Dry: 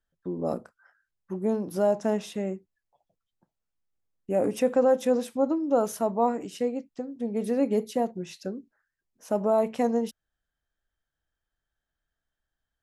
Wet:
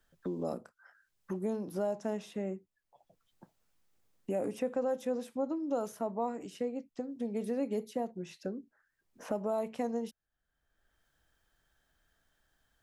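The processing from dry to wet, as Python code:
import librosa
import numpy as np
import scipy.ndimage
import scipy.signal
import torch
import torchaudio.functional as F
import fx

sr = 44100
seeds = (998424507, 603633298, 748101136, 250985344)

y = fx.band_squash(x, sr, depth_pct=70)
y = y * 10.0 ** (-9.0 / 20.0)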